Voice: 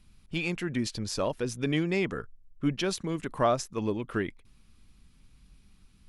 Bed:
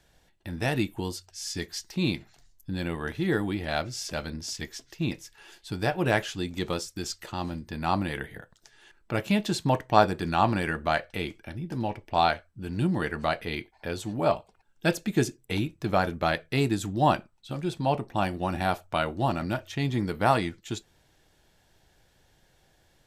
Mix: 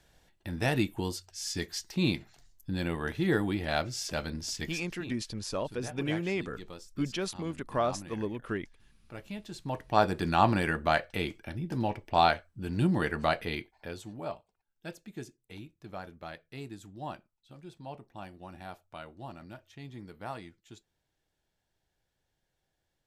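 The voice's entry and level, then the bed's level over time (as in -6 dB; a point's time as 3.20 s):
4.35 s, -4.0 dB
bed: 4.87 s -1 dB
5.15 s -16 dB
9.48 s -16 dB
10.18 s -0.5 dB
13.42 s -0.5 dB
14.56 s -17.5 dB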